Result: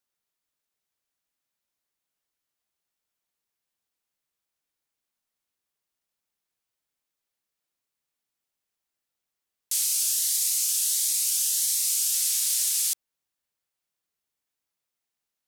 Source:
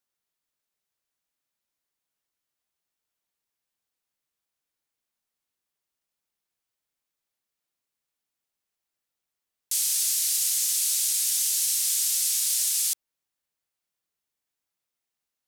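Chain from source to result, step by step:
0:09.85–0:12.14: phaser whose notches keep moving one way rising 1.5 Hz

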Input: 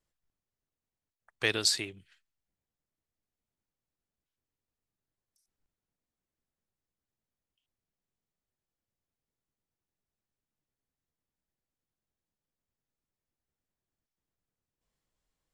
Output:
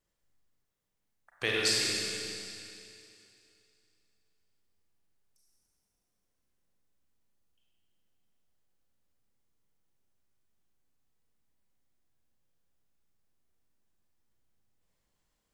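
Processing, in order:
in parallel at 0 dB: downward compressor, threshold −42 dBFS, peak gain reduction 18.5 dB
on the sum: four-comb reverb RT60 2.7 s, combs from 32 ms, DRR −3.5 dB
level −5 dB

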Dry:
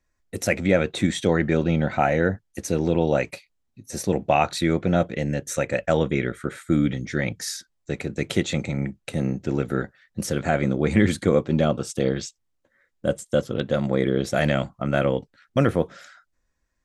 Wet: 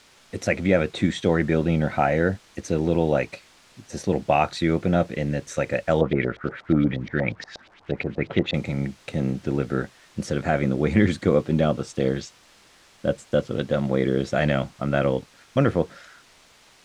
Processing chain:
bit-depth reduction 8 bits, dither triangular
0:06.01–0:08.54: auto-filter low-pass saw up 8.4 Hz 570–4,300 Hz
surface crackle 210 per second −48 dBFS
high-frequency loss of the air 85 metres

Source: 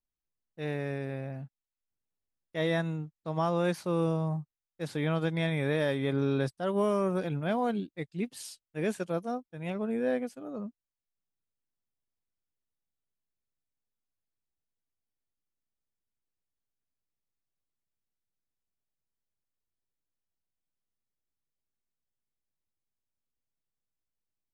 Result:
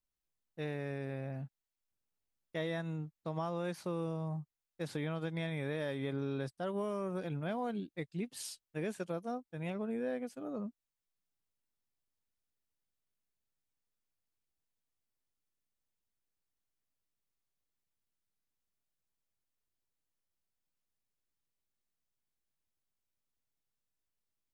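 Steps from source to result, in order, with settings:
downward compressor 3 to 1, threshold −36 dBFS, peak gain reduction 10 dB

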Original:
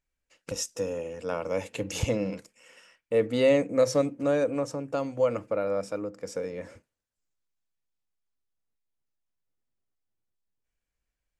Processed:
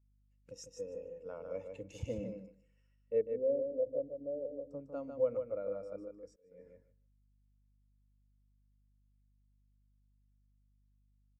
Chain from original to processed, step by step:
0:03.21–0:04.71: transistor ladder low-pass 760 Hz, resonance 40%
on a send: repeating echo 150 ms, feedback 24%, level −4.5 dB
on the sum: mains hum 50 Hz, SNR 18 dB
0:06.26–0:06.66: volume swells 359 ms
every bin expanded away from the loudest bin 1.5 to 1
level −8.5 dB

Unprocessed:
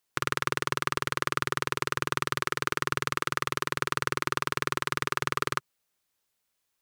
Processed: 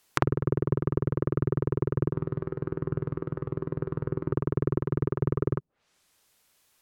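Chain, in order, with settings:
treble cut that deepens with the level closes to 300 Hz, closed at −30.5 dBFS
0:02.11–0:04.32: tuned comb filter 55 Hz, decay 0.32 s, harmonics odd, mix 50%
boost into a limiter +14 dB
level −1 dB

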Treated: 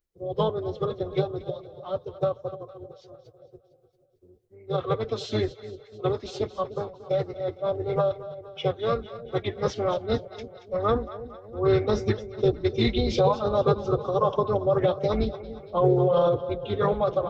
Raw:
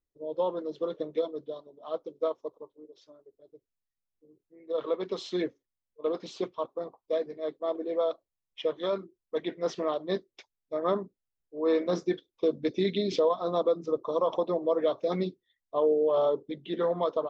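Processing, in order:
sub-octave generator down 2 octaves, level −4 dB
echo with a time of its own for lows and highs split 560 Hz, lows 297 ms, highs 228 ms, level −14 dB
phase-vocoder pitch shift with formants kept +3 semitones
level +4 dB

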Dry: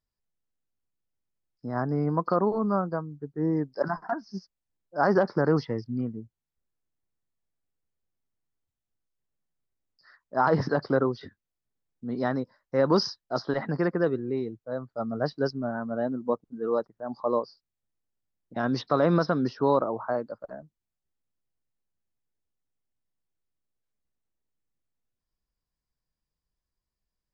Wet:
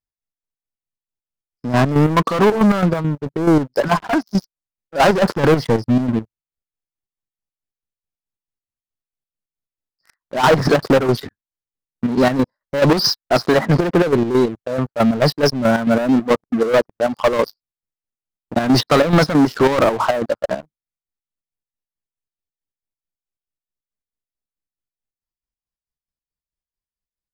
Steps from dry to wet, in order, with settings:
leveller curve on the samples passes 5
square-wave tremolo 4.6 Hz, depth 60%, duty 50%
wow of a warped record 45 rpm, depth 100 cents
level +2.5 dB

